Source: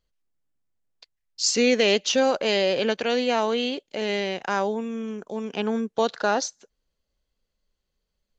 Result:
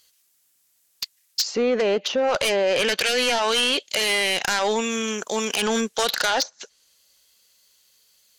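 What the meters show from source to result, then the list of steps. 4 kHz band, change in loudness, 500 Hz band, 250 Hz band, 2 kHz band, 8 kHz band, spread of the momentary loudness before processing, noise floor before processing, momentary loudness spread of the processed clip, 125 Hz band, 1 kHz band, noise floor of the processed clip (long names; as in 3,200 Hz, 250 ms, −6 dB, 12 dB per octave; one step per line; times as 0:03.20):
+5.5 dB, +2.5 dB, +0.5 dB, −2.0 dB, +5.0 dB, +3.0 dB, 11 LU, −80 dBFS, 6 LU, can't be measured, +2.0 dB, −65 dBFS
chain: first-order pre-emphasis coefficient 0.97
treble cut that deepens with the level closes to 700 Hz, closed at −29.5 dBFS
high-pass filter 75 Hz 12 dB per octave
in parallel at −2.5 dB: compressor whose output falls as the input rises −49 dBFS, ratio −1
on the sum: sine wavefolder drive 11 dB, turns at −23 dBFS
level +7.5 dB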